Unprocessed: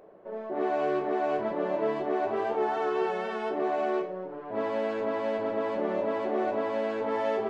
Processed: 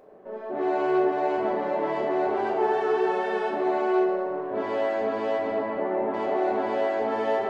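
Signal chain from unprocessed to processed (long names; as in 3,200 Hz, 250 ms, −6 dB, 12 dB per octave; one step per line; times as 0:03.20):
0:05.58–0:06.14: low-pass filter 1,800 Hz 12 dB per octave
convolution reverb RT60 2.4 s, pre-delay 4 ms, DRR −0.5 dB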